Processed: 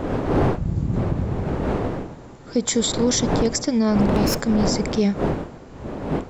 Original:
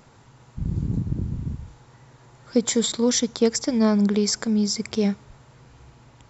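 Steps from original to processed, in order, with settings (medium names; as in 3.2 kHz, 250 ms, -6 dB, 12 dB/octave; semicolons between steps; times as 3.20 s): 3.99–4.41 s: comb filter that takes the minimum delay 0.74 ms; wind noise 450 Hz -24 dBFS; peak limiter -13 dBFS, peak gain reduction 11 dB; trim +2.5 dB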